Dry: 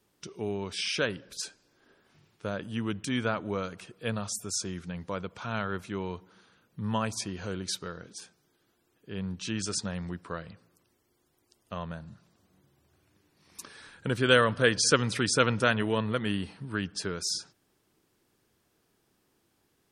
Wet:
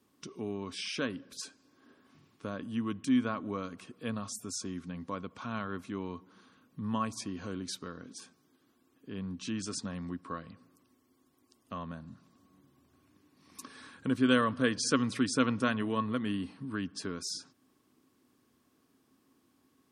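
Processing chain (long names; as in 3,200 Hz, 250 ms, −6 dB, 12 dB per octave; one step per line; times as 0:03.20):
high-pass filter 58 Hz
hollow resonant body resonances 260/1,100 Hz, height 15 dB, ringing for 75 ms
in parallel at +1 dB: downward compressor, threshold −43 dBFS, peak gain reduction 27.5 dB
on the sum: level −8.5 dB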